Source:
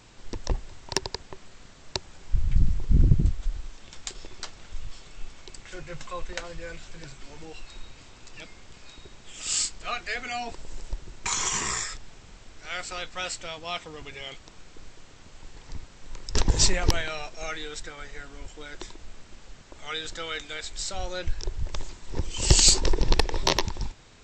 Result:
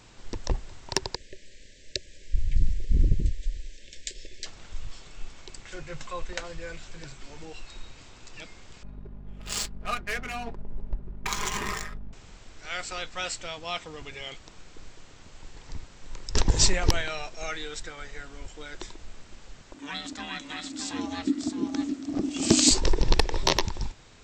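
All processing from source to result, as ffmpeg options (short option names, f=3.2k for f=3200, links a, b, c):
-filter_complex "[0:a]asettb=1/sr,asplit=3[a][b][c];[a]atrim=end=1.154[d];[b]atrim=start=1.15:end=4.46,asetpts=PTS-STARTPTS,afade=t=in:d=0.004:c=qsin,afade=t=out:st=3.306:d=0.004:c=qsin,asuperstop=centerf=1000:order=20:qfactor=0.98,equalizer=f=150:w=0.7:g=-9[e];[c]atrim=start=4.456[f];[d][e]acrossfade=d=0.004:c1=hsin:c2=qsin[g];[g][f]acrossfade=d=0.004:c1=qsin:c2=hsin,asettb=1/sr,asplit=3[h][i][j];[h]atrim=end=8.834[k];[i]atrim=start=8.83:end=12.13,asetpts=PTS-STARTPTS,afade=t=in:d=0.004:c=qsin,afade=t=out:st=3.296:d=0.004:c=qsin,aeval=exprs='val(0)+0.00794*(sin(2*PI*50*n/s)+sin(2*PI*2*50*n/s)/2+sin(2*PI*3*50*n/s)/3+sin(2*PI*4*50*n/s)/4+sin(2*PI*5*50*n/s)/5)':c=same,adynamicsmooth=sensitivity=5:basefreq=540,aecho=1:1:4.9:0.42,atrim=end_sample=145530[l];[j]atrim=start=12.126[m];[k][l]acrossfade=d=0.004:c1=hsin:c2=qsin[n];[n][m]acrossfade=d=0.004:c1=qsin:c2=hsin,asettb=1/sr,asplit=3[o][p][q];[o]atrim=end=19.744[r];[p]atrim=start=19.74:end=22.71,asetpts=PTS-STARTPTS,afade=t=in:d=0.004:c=qsin,afade=t=out:st=2.966:d=0.004:c=qsin,aeval=exprs='val(0)*sin(2*PI*280*n/s)':c=same,aecho=1:1:617:0.473,atrim=end_sample=130977[s];[q]atrim=start=22.706[t];[r][s]acrossfade=d=0.004:c1=hsin:c2=qsin[u];[u][t]acrossfade=d=0.004:c1=qsin:c2=hsin"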